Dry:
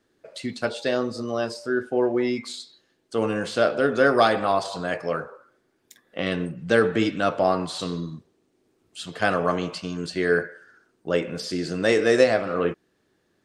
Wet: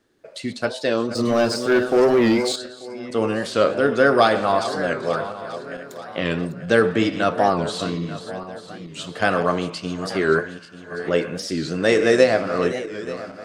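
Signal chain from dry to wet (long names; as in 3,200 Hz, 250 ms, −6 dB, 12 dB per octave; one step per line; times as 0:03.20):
feedback delay that plays each chunk backwards 444 ms, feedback 62%, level −12 dB
0:01.15–0:02.56: leveller curve on the samples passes 2
wow of a warped record 45 rpm, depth 160 cents
level +2.5 dB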